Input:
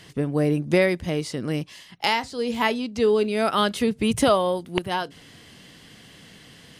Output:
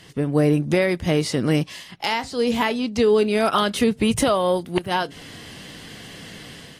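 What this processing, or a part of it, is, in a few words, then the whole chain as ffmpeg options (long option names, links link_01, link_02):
low-bitrate web radio: -af "dynaudnorm=framelen=130:gausssize=5:maxgain=7.5dB,alimiter=limit=-9.5dB:level=0:latency=1:release=233" -ar 44100 -c:a aac -b:a 48k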